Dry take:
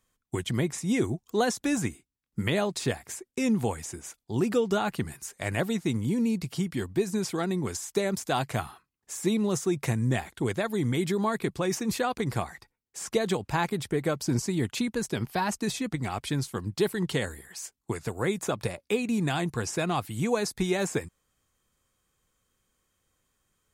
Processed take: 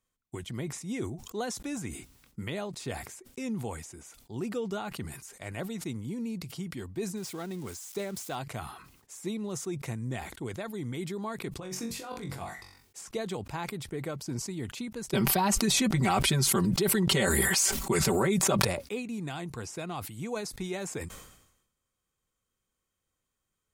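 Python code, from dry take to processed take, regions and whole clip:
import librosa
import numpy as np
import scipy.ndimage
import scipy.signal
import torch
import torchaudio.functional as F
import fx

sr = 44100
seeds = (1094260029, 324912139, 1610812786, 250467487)

y = fx.chain(x, sr, fx.crossing_spikes(level_db=-28.0),
    fx.high_shelf(hz=8200.0, db=-9.0), at=(7.16, 8.36))
y = fx.chain(y, sr, fx.over_compress(threshold_db=-30.0, ratio=-0.5),
    fx.room_flutter(wall_m=3.7, rt60_s=0.26), at=(11.6, 13.01))
y = fx.chain(y, sr, fx.comb(ms=5.2, depth=0.89),
    fx.env_flatten(amount_pct=100), at=(15.13, 18.65))
y = fx.notch(y, sr, hz=1700.0, q=17.0)
y = fx.sustainer(y, sr, db_per_s=65.0)
y = y * 10.0 ** (-9.0 / 20.0)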